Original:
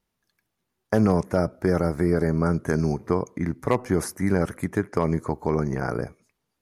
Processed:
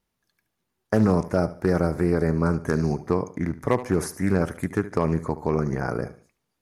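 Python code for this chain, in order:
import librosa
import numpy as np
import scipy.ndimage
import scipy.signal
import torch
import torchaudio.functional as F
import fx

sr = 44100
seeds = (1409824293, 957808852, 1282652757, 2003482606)

p1 = x + fx.echo_feedback(x, sr, ms=73, feedback_pct=32, wet_db=-15, dry=0)
y = fx.doppler_dist(p1, sr, depth_ms=0.23)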